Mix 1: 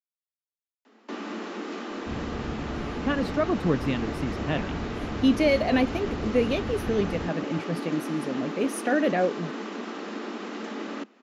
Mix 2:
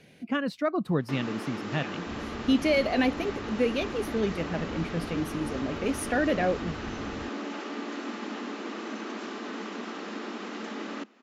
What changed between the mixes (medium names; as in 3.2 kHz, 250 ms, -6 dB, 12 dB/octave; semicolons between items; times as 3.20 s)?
speech: entry -2.75 s; second sound -6.5 dB; master: add peaking EQ 420 Hz -3 dB 2.2 oct